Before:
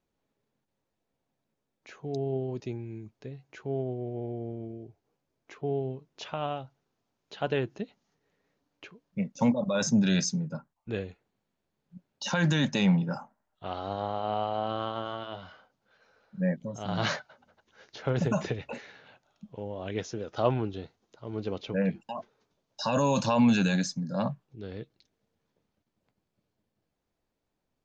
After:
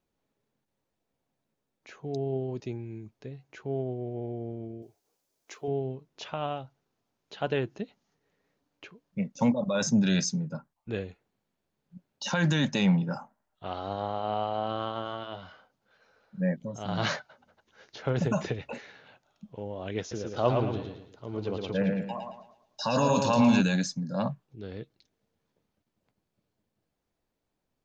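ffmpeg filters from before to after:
-filter_complex "[0:a]asettb=1/sr,asplit=3[a][b][c];[a]atrim=end=4.824[d];[b]atrim=start=4.82:end=5.68,asetpts=PTS-STARTPTS,afade=t=in:d=0.004:c=qsin,afade=t=out:st=0.856:d=0.004:c=qsin,bass=f=250:g=-11,treble=f=4k:g=14[e];[c]atrim=start=5.676[f];[d][e]acrossfade=d=0.004:c1=hsin:c2=qsin[g];[g][f]acrossfade=d=0.004:c1=qsin:c2=hsin,asettb=1/sr,asplit=3[h][i][j];[h]atrim=end=20.004[k];[i]atrim=start=20:end=23.61,asetpts=PTS-STARTPTS,afade=t=in:d=0.004:c=qsin,afade=t=out:st=3.606:d=0.004:c=qsin,aecho=1:1:112|224|336|448|560:0.631|0.233|0.0864|0.032|0.0118,atrim=end_sample=159201[l];[j]atrim=start=23.606[m];[k][l]acrossfade=d=0.004:c1=hsin:c2=qsin[n];[n][m]acrossfade=d=0.004:c1=qsin:c2=hsin"

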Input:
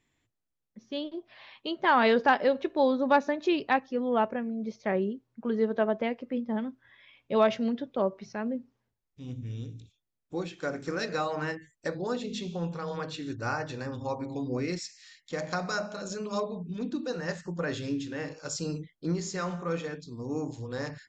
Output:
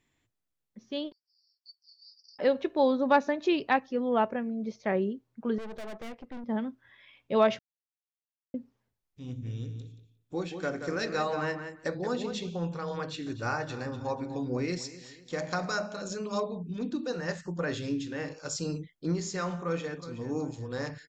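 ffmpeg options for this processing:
-filter_complex "[0:a]asettb=1/sr,asplit=3[a][b][c];[a]atrim=end=1.124[d];[b]atrim=start=1.12:end=2.39,asetpts=PTS-STARTPTS,afade=t=in:d=0.004:c=qsin,afade=t=out:st=1.266:d=0.004:c=qsin,asuperpass=centerf=5100:order=12:qfactor=3.9[e];[c]atrim=start=2.386[f];[d][e]acrossfade=d=0.004:c1=hsin:c2=qsin[g];[g][f]acrossfade=d=0.004:c1=qsin:c2=hsin,asettb=1/sr,asplit=3[h][i][j];[h]atrim=end=5.584[k];[i]atrim=start=5.58:end=6.44,asetpts=PTS-STARTPTS,afade=t=in:d=0.004:c=qsin,afade=t=out:st=0.856:d=0.004:c=qsin,aeval=exprs='(tanh(89.1*val(0)+0.75)-tanh(0.75))/89.1':c=same[l];[j]atrim=start=6.436[m];[k][l]acrossfade=d=0.004:c1=hsin:c2=qsin[n];[n][m]acrossfade=d=0.004:c1=qsin:c2=hsin,asettb=1/sr,asplit=3[o][p][q];[o]atrim=end=9.284[r];[p]atrim=start=9.28:end=12.5,asetpts=PTS-STARTPTS,afade=t=in:d=0.004:c=qsin,afade=t=out:st=3.216:d=0.004:c=qsin,asplit=2[s][t];[t]adelay=177,lowpass=f=3.8k:p=1,volume=-7.5dB,asplit=2[u][v];[v]adelay=177,lowpass=f=3.8k:p=1,volume=0.16,asplit=2[w][x];[x]adelay=177,lowpass=f=3.8k:p=1,volume=0.16[y];[s][u][w][y]amix=inputs=4:normalize=0,atrim=end_sample=142002[z];[q]atrim=start=12.496[aa];[r][z]acrossfade=d=0.004:c1=hsin:c2=qsin[ab];[ab][aa]acrossfade=d=0.004:c1=qsin:c2=hsin,asettb=1/sr,asplit=3[ac][ad][ae];[ac]atrim=end=13.024[af];[ad]atrim=start=13.02:end=15.7,asetpts=PTS-STARTPTS,afade=t=in:d=0.004:c=qsin,afade=t=out:st=2.676:d=0.004:c=qsin,aecho=1:1:245|490|735|980:0.158|0.065|0.0266|0.0109,atrim=end_sample=118188[ag];[ae]atrim=start=15.696[ah];[af][ag]acrossfade=d=0.004:c1=hsin:c2=qsin[ai];[ai][ah]acrossfade=d=0.004:c1=qsin:c2=hsin,asplit=2[aj][ak];[ak]afade=t=in:st=19.59:d=0.01,afade=t=out:st=20.08:d=0.01,aecho=0:1:370|740|1110:0.223872|0.0783552|0.0274243[al];[aj][al]amix=inputs=2:normalize=0,asplit=3[am][an][ao];[am]atrim=end=7.59,asetpts=PTS-STARTPTS,afade=t=out:st=7.586:d=0.004:c=hsin[ap];[an]atrim=start=7.59:end=8.54,asetpts=PTS-STARTPTS,volume=0[aq];[ao]atrim=start=8.54,asetpts=PTS-STARTPTS,afade=t=in:d=0.004:c=hsin[ar];[ap][aq][ar]concat=n=3:v=0:a=1"

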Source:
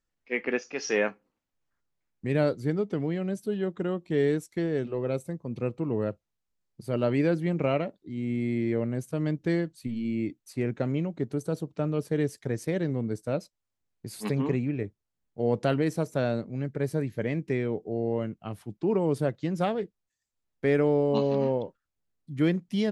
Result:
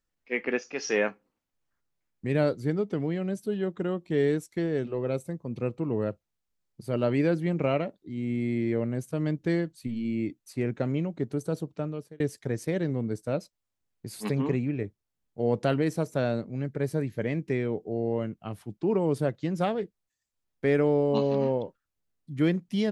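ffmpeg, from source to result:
-filter_complex "[0:a]asplit=2[a][b];[a]atrim=end=12.2,asetpts=PTS-STARTPTS,afade=t=out:st=11.66:d=0.54[c];[b]atrim=start=12.2,asetpts=PTS-STARTPTS,afade=t=in:d=0.004:c=hsin[d];[c][d]concat=n=2:v=0:a=1"

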